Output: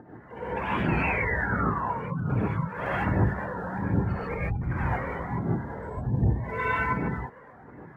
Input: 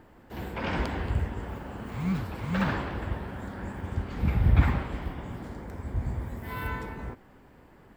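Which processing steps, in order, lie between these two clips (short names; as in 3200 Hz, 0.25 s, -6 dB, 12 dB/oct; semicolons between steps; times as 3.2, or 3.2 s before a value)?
HPF 120 Hz 12 dB/oct; spectral gate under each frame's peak -20 dB strong; low shelf 320 Hz -2.5 dB; negative-ratio compressor -34 dBFS, ratio -0.5; phaser 1.3 Hz, delay 2.3 ms, feedback 76%; painted sound fall, 0.89–1.85, 880–2800 Hz -35 dBFS; non-linear reverb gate 0.17 s rising, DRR -8 dB; record warp 45 rpm, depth 100 cents; gain -4 dB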